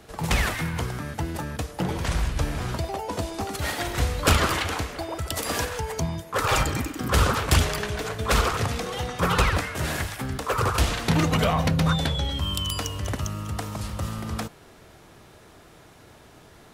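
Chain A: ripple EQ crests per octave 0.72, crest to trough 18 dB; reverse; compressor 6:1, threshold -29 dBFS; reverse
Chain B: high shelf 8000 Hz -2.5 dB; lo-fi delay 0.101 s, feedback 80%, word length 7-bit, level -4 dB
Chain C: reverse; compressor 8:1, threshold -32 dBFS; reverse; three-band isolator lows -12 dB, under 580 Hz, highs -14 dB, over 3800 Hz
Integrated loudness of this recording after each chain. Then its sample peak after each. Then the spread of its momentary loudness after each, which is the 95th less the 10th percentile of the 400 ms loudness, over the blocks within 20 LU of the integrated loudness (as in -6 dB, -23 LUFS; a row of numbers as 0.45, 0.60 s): -32.5, -24.0, -40.5 LUFS; -14.5, -5.5, -23.5 dBFS; 15, 9, 17 LU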